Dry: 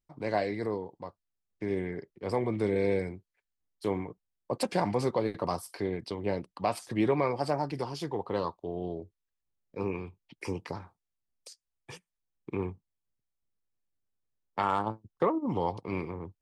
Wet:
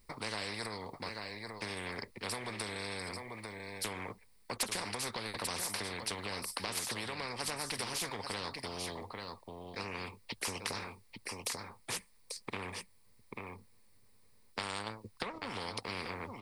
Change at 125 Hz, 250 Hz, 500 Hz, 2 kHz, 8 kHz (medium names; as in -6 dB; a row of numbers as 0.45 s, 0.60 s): -10.0 dB, -12.5 dB, -13.0 dB, +2.5 dB, +11.0 dB